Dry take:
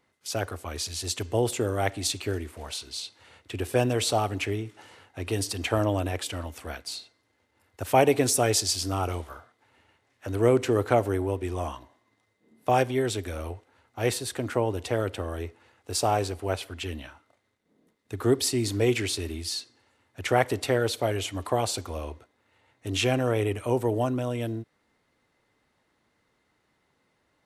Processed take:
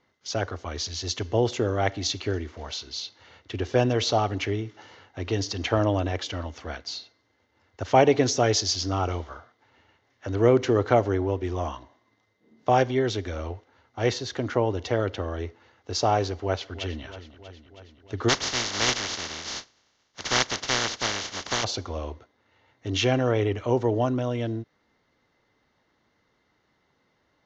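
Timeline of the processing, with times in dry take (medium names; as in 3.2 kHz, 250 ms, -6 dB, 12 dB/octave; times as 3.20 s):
16.40–17.04 s: echo throw 320 ms, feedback 70%, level -14 dB
18.28–21.63 s: spectral contrast reduction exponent 0.13
whole clip: steep low-pass 6.7 kHz 96 dB/octave; band-stop 2.5 kHz, Q 11; trim +2 dB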